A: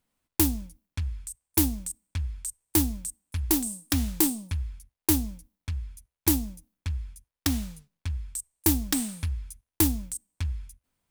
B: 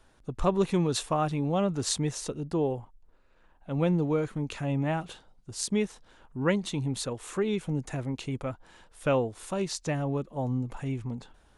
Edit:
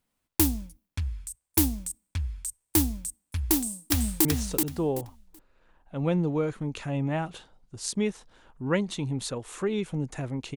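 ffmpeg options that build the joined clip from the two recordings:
ffmpeg -i cue0.wav -i cue1.wav -filter_complex "[0:a]apad=whole_dur=10.56,atrim=end=10.56,atrim=end=4.252[link_01];[1:a]atrim=start=1.998:end=8.31[link_02];[link_01][link_02]acrossfade=duration=0.004:curve1=hsin:curve2=hsin,asplit=2[link_03][link_04];[link_04]afade=type=in:start_time=3.52:duration=0.01,afade=type=out:start_time=4.25:duration=0.01,aecho=0:1:380|760|1140:0.668344|0.133669|0.0267338[link_05];[link_03][link_05]amix=inputs=2:normalize=0" out.wav

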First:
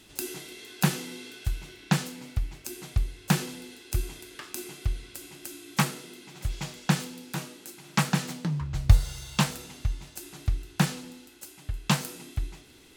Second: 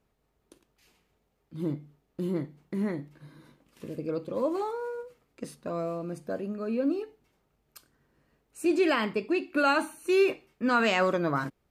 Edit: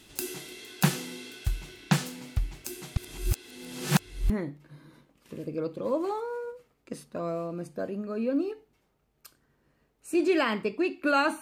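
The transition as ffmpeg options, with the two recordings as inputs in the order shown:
ffmpeg -i cue0.wav -i cue1.wav -filter_complex "[0:a]apad=whole_dur=11.41,atrim=end=11.41,asplit=2[link_01][link_02];[link_01]atrim=end=2.972[link_03];[link_02]atrim=start=2.968:end=4.302,asetpts=PTS-STARTPTS,areverse[link_04];[1:a]atrim=start=2.808:end=9.92[link_05];[link_03][link_04]acrossfade=duration=0.004:curve1=hsin:curve2=hsin[link_06];[link_06][link_05]acrossfade=duration=0.004:curve1=hsin:curve2=hsin" out.wav

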